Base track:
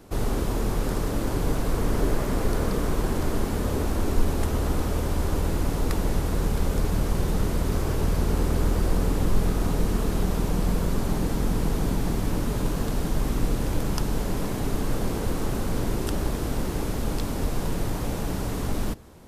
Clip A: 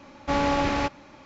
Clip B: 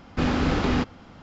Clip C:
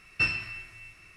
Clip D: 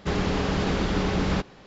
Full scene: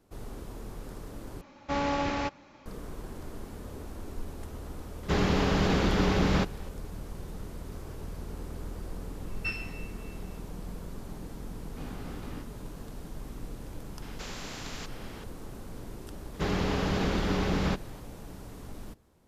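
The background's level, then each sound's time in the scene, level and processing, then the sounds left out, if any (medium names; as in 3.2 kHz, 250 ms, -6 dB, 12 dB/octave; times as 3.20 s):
base track -16 dB
1.41 s: replace with A -5.5 dB
5.03 s: add D -0.5 dB
9.25 s: add C -8.5 dB
11.59 s: add B -17 dB + feedback comb 58 Hz, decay 0.18 s, mix 80%
14.02 s: add B -17 dB + spectrum-flattening compressor 4:1
16.34 s: add D -3.5 dB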